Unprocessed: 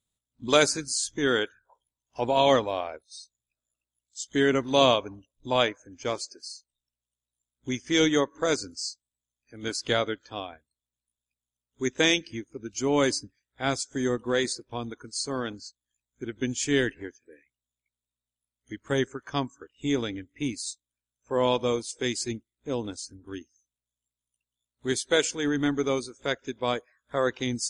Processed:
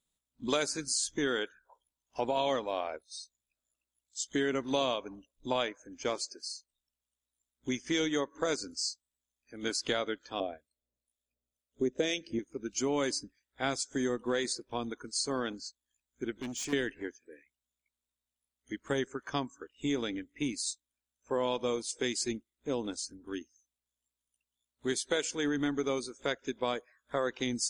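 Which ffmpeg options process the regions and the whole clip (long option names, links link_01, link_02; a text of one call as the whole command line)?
ffmpeg -i in.wav -filter_complex "[0:a]asettb=1/sr,asplit=3[link_01][link_02][link_03];[link_01]atrim=end=10.404[link_04];[link_02]atrim=start=10.4:end=12.39,asetpts=PTS-STARTPTS,afade=type=in:duration=0.004:curve=qsin,afade=type=out:start_time=1.986:duration=0.004:curve=qsin,lowshelf=frequency=750:width_type=q:width=3:gain=6,acrossover=split=910[link_05][link_06];[link_05]aeval=exprs='val(0)*(1-0.7/2+0.7/2*cos(2*PI*2*n/s))':channel_layout=same[link_07];[link_06]aeval=exprs='val(0)*(1-0.7/2-0.7/2*cos(2*PI*2*n/s))':channel_layout=same[link_08];[link_07][link_08]amix=inputs=2:normalize=0[link_09];[link_03]atrim=start=12.386[link_10];[link_04][link_09]acrossfade=duration=0.004:curve1=hsin:curve2=qsin[link_11];[link_11][link_10]acrossfade=duration=0.004:curve1=qsin:curve2=hsin,asettb=1/sr,asplit=3[link_12][link_13][link_14];[link_12]atrim=end=16.334[link_15];[link_13]atrim=start=16.33:end=16.73,asetpts=PTS-STARTPTS,afade=type=in:duration=0.004:curve=qsin,afade=type=out:start_time=0.396:duration=0.004:curve=qsin,asoftclip=type=hard:threshold=-29.5dB,acompressor=threshold=-37dB:ratio=3:attack=3.2:release=140:knee=1:detection=peak[link_16];[link_14]atrim=start=16.726[link_17];[link_15][link_16]acrossfade=duration=0.004:curve1=hsin:curve2=qsin[link_18];[link_18][link_17]acrossfade=duration=0.004:curve1=qsin:curve2=hsin,acompressor=threshold=-28dB:ratio=4,equalizer=frequency=100:width_type=o:width=0.51:gain=-15" out.wav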